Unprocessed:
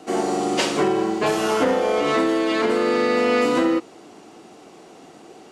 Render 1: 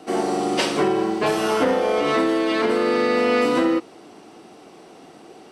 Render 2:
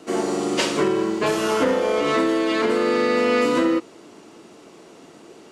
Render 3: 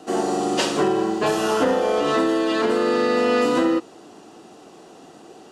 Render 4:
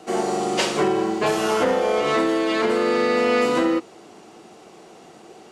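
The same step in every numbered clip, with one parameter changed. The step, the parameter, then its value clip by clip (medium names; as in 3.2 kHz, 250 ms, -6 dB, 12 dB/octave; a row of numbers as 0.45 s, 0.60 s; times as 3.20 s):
band-stop, frequency: 6.9 kHz, 760 Hz, 2.2 kHz, 280 Hz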